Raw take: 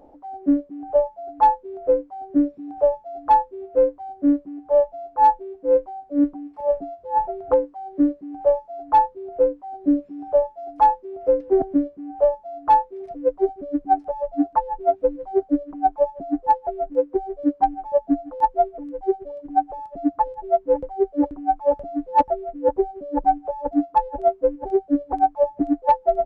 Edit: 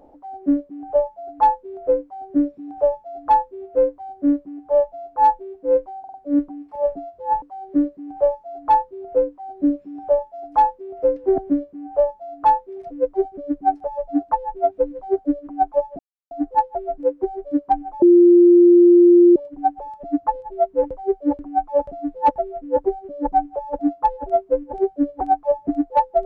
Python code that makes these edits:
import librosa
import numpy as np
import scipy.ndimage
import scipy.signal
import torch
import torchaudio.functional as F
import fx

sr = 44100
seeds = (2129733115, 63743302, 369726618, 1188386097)

y = fx.edit(x, sr, fx.stutter(start_s=5.99, slice_s=0.05, count=4),
    fx.cut(start_s=7.27, length_s=0.39),
    fx.insert_silence(at_s=16.23, length_s=0.32),
    fx.bleep(start_s=17.94, length_s=1.34, hz=349.0, db=-7.0), tone=tone)